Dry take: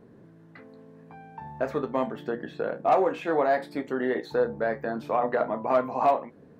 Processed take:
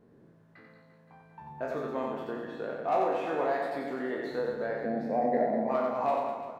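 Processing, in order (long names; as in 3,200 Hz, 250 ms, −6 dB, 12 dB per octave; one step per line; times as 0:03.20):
peak hold with a decay on every bin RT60 0.55 s
0:04.81–0:05.69: drawn EQ curve 120 Hz 0 dB, 230 Hz +11 dB, 330 Hz +3 dB, 780 Hz +5 dB, 1,200 Hz −23 dB, 2,000 Hz +2 dB, 3,000 Hz −18 dB, 4,700 Hz −1 dB, 7,900 Hz −8 dB
on a send: reverse bouncing-ball delay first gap 90 ms, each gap 1.25×, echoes 5
on the sum: level −9 dB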